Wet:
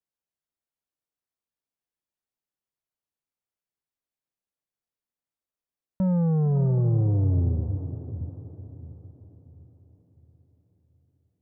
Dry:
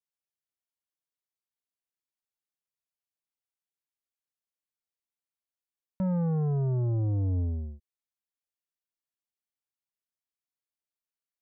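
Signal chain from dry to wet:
tilt shelving filter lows +5 dB, about 1,300 Hz
feedback delay with all-pass diffusion 532 ms, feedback 46%, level −9.5 dB

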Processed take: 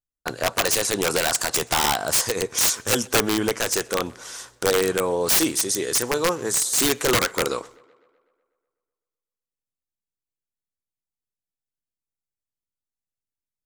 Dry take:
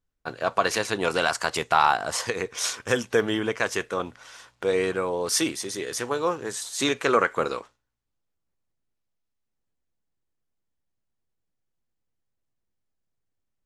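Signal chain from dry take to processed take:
pitch vibrato 0.51 Hz 12 cents
drawn EQ curve 350 Hz 0 dB, 2,700 Hz −4 dB, 7,900 Hz +9 dB
in parallel at −2.5 dB: downward compressor 12 to 1, threshold −32 dBFS, peak gain reduction 19 dB
on the sum: noise gate with hold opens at −45 dBFS
wrap-around overflow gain 14.5 dB
on a send: tape delay 125 ms, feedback 65%, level −23.5 dB, low-pass 4,600 Hz
on the sum: level +2.5 dB

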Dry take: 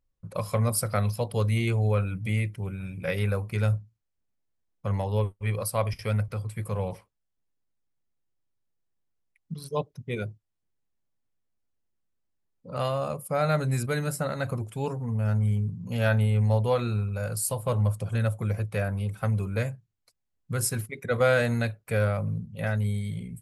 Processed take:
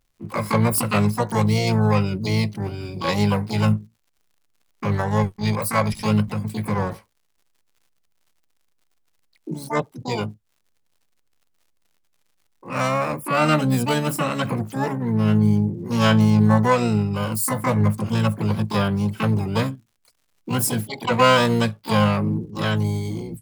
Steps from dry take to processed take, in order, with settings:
surface crackle 49 per second −54 dBFS
pitch-shifted copies added +7 semitones −8 dB, +12 semitones −1 dB
level +3.5 dB

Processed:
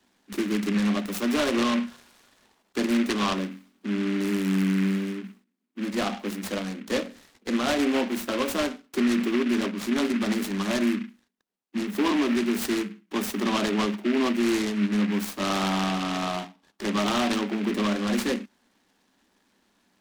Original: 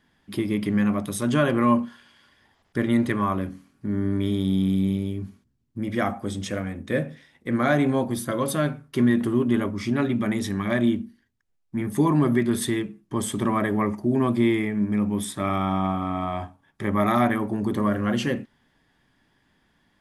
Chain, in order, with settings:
Chebyshev high-pass filter 180 Hz, order 10
brickwall limiter −16 dBFS, peak gain reduction 7 dB
short delay modulated by noise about 1,900 Hz, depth 0.11 ms

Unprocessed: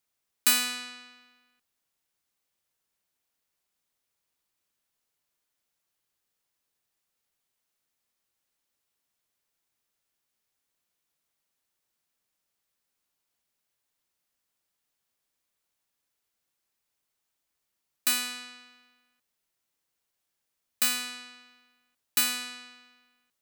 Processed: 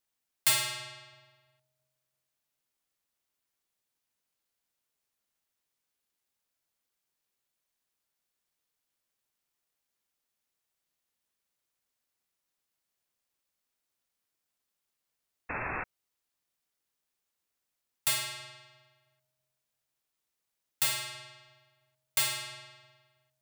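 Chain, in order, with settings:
bucket-brigade delay 331 ms, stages 1,024, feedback 33%, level −19 dB
sound drawn into the spectrogram noise, 0:15.49–0:15.84, 250–2,300 Hz −32 dBFS
ring modulation 380 Hz

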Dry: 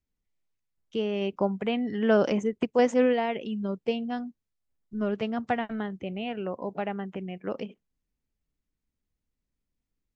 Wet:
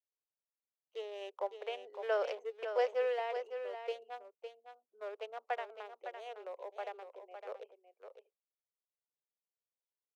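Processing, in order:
adaptive Wiener filter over 25 samples
Butterworth high-pass 450 Hz 48 dB per octave
on a send: single-tap delay 558 ms −8.5 dB
on the sum: level −8 dB

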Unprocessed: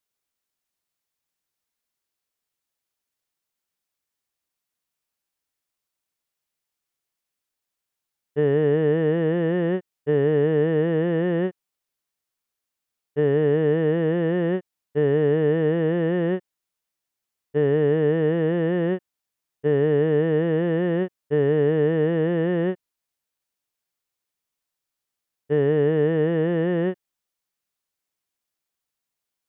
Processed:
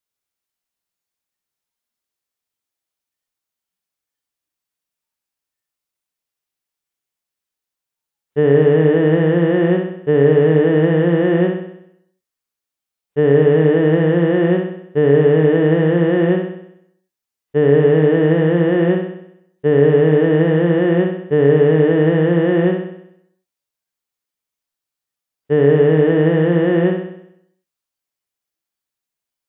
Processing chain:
flutter between parallel walls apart 11 metres, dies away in 0.75 s
noise reduction from a noise print of the clip's start 9 dB
level +6.5 dB

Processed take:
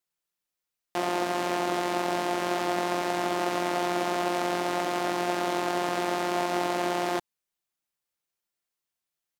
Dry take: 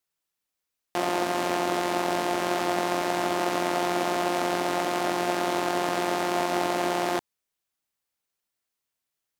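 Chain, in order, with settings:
comb filter 5.7 ms, depth 32%
level −3.5 dB

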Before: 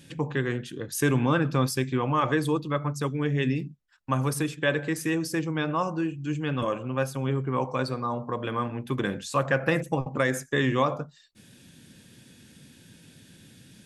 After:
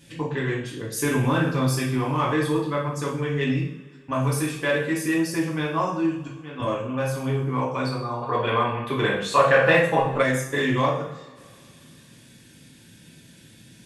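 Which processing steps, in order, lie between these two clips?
0:06.07–0:06.60: volume swells 644 ms
coupled-rooms reverb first 0.53 s, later 2.5 s, from −22 dB, DRR −5.5 dB
in parallel at −8 dB: gain into a clipping stage and back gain 17 dB
0:08.23–0:10.22: on the sum: gain on a spectral selection 370–4,500 Hz +7 dB
level −6 dB

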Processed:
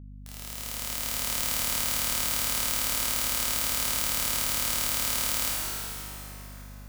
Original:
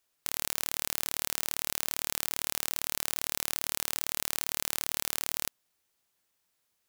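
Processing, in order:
fade in at the beginning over 1.39 s
dense smooth reverb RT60 4.2 s, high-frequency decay 0.7×, DRR −7.5 dB
mains hum 50 Hz, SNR 14 dB
level −1.5 dB

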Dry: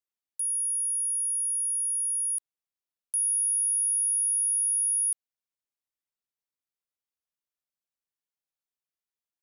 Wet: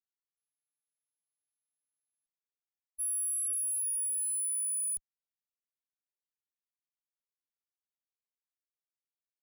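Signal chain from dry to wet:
one-sided soft clipper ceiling −26.5 dBFS
source passing by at 0:03.91, 18 m/s, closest 7.5 metres
noise gate −37 dBFS, range −52 dB
brickwall limiter −34 dBFS, peak gain reduction 10 dB
level +5 dB

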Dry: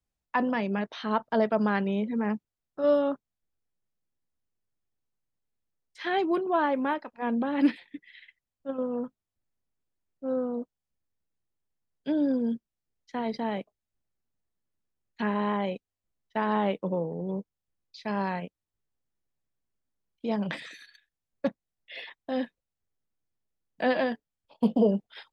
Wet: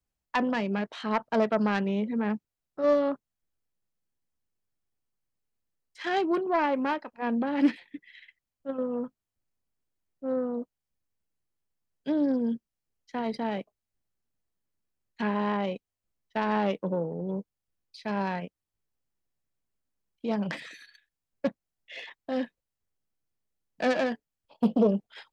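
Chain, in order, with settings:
phase distortion by the signal itself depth 0.14 ms
notch filter 3,600 Hz, Q 21

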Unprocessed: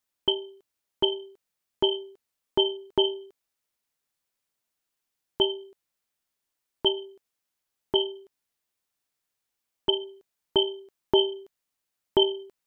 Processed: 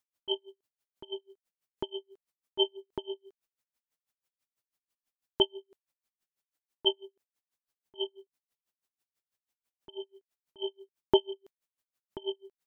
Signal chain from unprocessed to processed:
tremolo with a sine in dB 6.1 Hz, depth 36 dB

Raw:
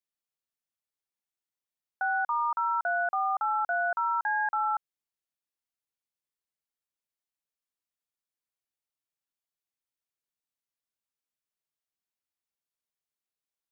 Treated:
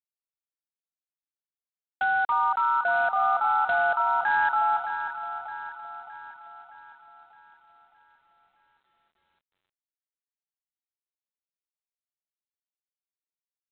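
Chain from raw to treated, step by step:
delay that swaps between a low-pass and a high-pass 308 ms, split 1,200 Hz, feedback 71%, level −7 dB
level +4 dB
G.726 24 kbit/s 8,000 Hz

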